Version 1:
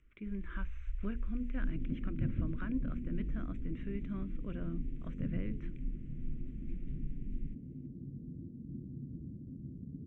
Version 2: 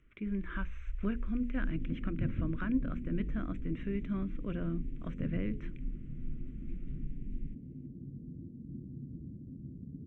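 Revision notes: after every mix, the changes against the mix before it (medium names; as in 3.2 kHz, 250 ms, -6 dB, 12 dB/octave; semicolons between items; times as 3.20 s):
speech +5.5 dB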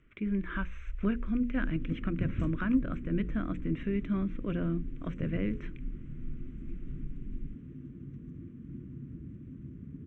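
speech +4.5 dB; second sound: remove rippled Chebyshev low-pass 740 Hz, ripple 3 dB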